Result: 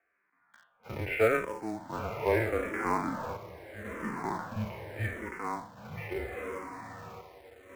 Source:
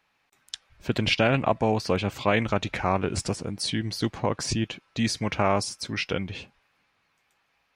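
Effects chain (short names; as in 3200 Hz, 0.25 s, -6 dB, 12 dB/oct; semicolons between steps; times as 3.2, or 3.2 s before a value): spectral trails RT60 0.36 s; on a send: diffused feedback echo 1.036 s, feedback 51%, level -11 dB; on the sum: chopper 0.52 Hz, depth 65%, duty 75%; harmonic-percussive split percussive -18 dB; mistuned SSB -120 Hz 240–2100 Hz; low shelf 460 Hz -6.5 dB; in parallel at -7.5 dB: companded quantiser 4-bit; 5.87–6.37 on the sum: notch comb 320 Hz; endless phaser -0.79 Hz; gain +4 dB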